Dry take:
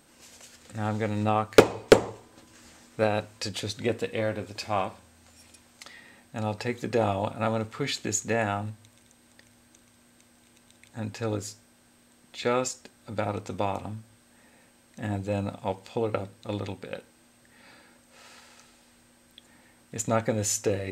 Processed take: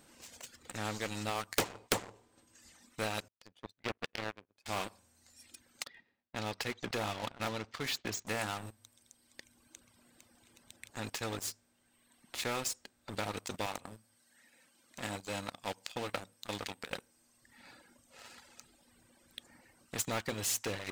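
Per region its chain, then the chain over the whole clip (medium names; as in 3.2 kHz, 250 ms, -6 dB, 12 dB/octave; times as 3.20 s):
3.28–4.66 s: band-pass 100–2500 Hz + power-law waveshaper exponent 2
5.84–8.27 s: low-pass 5.2 kHz 24 dB/octave + expander -45 dBFS
13.66–16.90 s: high-pass 200 Hz 6 dB/octave + peaking EQ 380 Hz -7 dB 0.26 oct
whole clip: reverb removal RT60 1.5 s; waveshaping leveller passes 2; spectrum-flattening compressor 2:1; trim -3.5 dB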